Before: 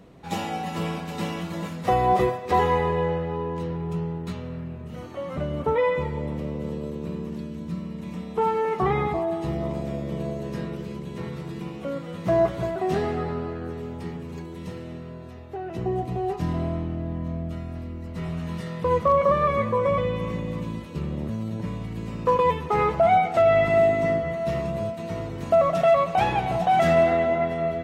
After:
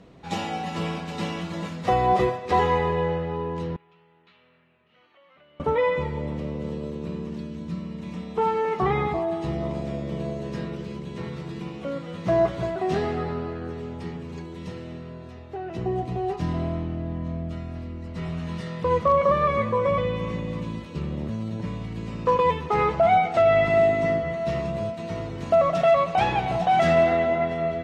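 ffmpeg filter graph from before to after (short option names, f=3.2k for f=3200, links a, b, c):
-filter_complex "[0:a]asettb=1/sr,asplit=3[a][b][c];[a]atrim=end=3.764[d];[b]atrim=start=3.76:end=5.6,asetpts=PTS-STARTPTS,afade=t=in:d=0.004:c=qsin,afade=t=out:st=1.836:d=0.004:c=qsin,lowpass=f=3k:w=0.5412,lowpass=f=3k:w=1.3066,aderivative,acompressor=threshold=-55dB:ratio=2:attack=3.2:release=140:knee=1:detection=peak[e];[c]atrim=start=5.596[f];[d][e]acrossfade=d=0.004:c1=hsin:c2=qsin[g];[g][f]acrossfade=d=0.004:c1=qsin:c2=hsin,lowpass=5k,aemphasis=mode=production:type=cd"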